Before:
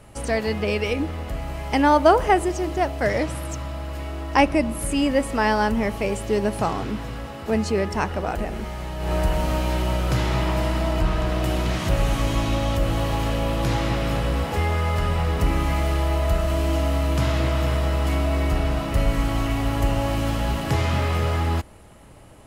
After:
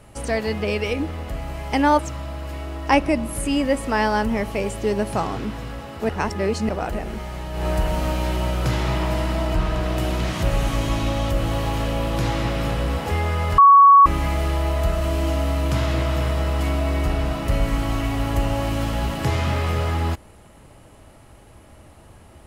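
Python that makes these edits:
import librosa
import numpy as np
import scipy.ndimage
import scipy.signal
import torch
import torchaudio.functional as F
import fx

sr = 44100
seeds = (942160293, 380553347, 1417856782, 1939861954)

y = fx.edit(x, sr, fx.cut(start_s=1.99, length_s=1.46),
    fx.reverse_span(start_s=7.55, length_s=0.6),
    fx.bleep(start_s=15.04, length_s=0.48, hz=1120.0, db=-6.5), tone=tone)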